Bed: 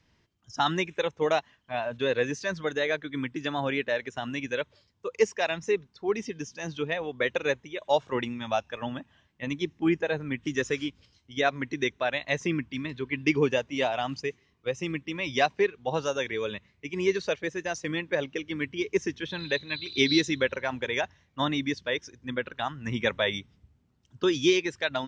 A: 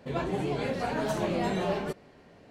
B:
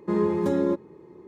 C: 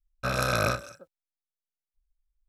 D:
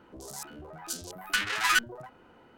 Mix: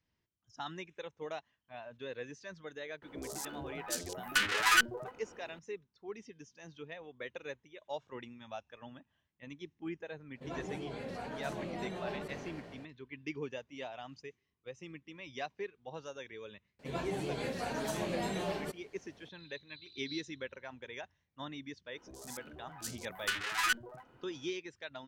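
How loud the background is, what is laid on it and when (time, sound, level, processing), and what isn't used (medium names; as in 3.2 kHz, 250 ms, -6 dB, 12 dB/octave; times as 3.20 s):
bed -16.5 dB
3.02 s: add D -1.5 dB + peaking EQ 450 Hz +5.5 dB 0.68 oct
10.35 s: add A -12.5 dB + decay stretcher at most 20 dB/s
16.79 s: add A -7.5 dB + treble shelf 4.2 kHz +10.5 dB
21.94 s: add D -6.5 dB
not used: B, C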